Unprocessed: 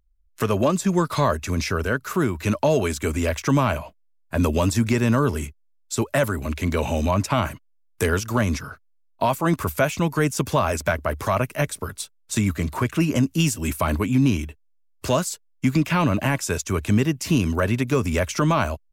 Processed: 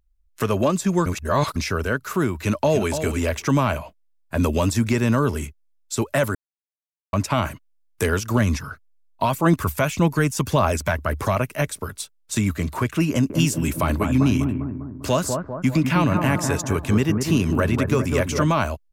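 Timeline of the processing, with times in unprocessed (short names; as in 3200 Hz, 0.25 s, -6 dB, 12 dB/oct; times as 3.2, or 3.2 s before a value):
1.06–1.56 reverse
2.34–2.9 echo throw 0.29 s, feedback 10%, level -9 dB
6.35–7.13 mute
8.29–11.36 phaser 1.7 Hz, delay 1.2 ms, feedback 37%
13.1–18.49 analogue delay 0.199 s, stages 2048, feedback 53%, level -5 dB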